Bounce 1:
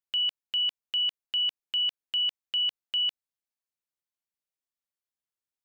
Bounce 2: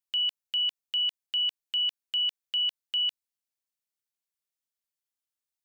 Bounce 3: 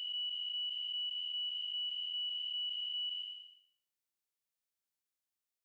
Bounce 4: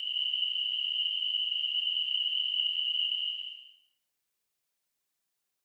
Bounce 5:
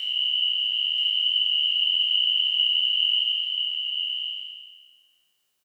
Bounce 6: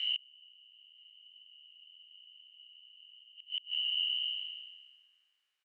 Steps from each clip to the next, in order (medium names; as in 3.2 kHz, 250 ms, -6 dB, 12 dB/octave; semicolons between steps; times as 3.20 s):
treble shelf 2.5 kHz +8 dB; trim -5 dB
spectral blur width 521 ms; peak limiter -34.5 dBFS, peak gain reduction 5.5 dB
whisper effect; gated-style reverb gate 250 ms rising, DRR 2 dB; trim +6 dB
spectral sustain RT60 1.43 s; on a send: delay 981 ms -4.5 dB; on the sum: trim +4 dB
inverted gate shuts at -18 dBFS, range -30 dB; band-pass filter 2 kHz, Q 1.4; trim -1 dB